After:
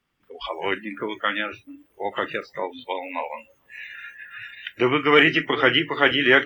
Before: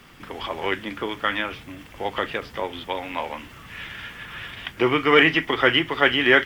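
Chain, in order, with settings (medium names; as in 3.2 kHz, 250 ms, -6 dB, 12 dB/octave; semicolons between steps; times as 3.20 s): feedback echo behind a low-pass 438 ms, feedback 68%, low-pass 890 Hz, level -14.5 dB; spectral noise reduction 26 dB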